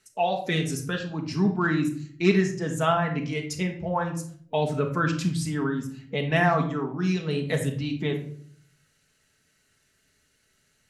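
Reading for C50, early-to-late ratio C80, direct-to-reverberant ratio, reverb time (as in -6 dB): 9.0 dB, 13.0 dB, 2.0 dB, 0.60 s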